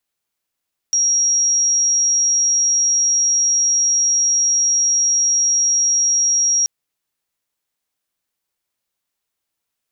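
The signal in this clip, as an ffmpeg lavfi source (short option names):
-f lavfi -i "aevalsrc='0.224*sin(2*PI*5650*t)':d=5.73:s=44100"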